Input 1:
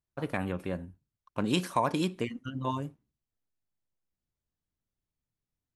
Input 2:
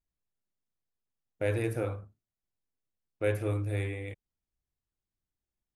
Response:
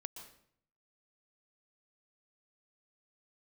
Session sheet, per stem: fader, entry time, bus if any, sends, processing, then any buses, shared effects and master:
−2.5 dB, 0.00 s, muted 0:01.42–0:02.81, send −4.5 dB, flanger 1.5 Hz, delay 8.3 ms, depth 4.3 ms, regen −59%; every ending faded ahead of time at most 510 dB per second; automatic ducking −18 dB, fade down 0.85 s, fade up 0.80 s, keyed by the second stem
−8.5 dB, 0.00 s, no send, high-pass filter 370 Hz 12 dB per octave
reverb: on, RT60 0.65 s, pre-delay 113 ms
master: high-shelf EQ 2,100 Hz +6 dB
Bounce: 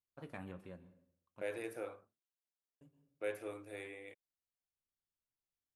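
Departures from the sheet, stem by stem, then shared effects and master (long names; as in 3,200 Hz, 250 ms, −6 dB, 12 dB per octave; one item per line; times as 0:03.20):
stem 1 −2.5 dB → −14.0 dB
master: missing high-shelf EQ 2,100 Hz +6 dB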